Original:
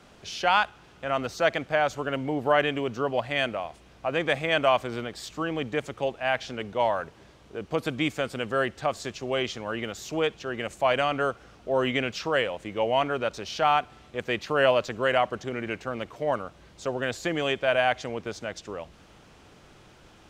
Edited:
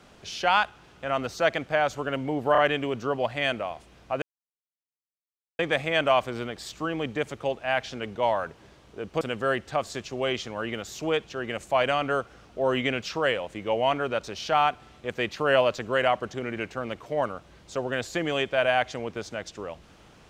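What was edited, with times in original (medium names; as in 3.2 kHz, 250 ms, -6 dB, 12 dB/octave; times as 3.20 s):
2.52 s: stutter 0.03 s, 3 plays
4.16 s: insert silence 1.37 s
7.78–8.31 s: delete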